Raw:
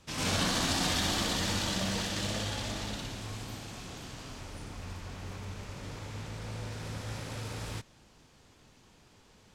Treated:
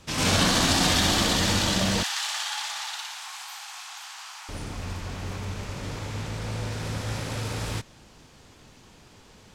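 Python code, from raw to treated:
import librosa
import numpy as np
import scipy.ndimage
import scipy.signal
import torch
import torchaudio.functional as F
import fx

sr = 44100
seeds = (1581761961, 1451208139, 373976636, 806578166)

y = fx.cheby1_highpass(x, sr, hz=800.0, order=5, at=(2.03, 4.49))
y = y * 10.0 ** (8.0 / 20.0)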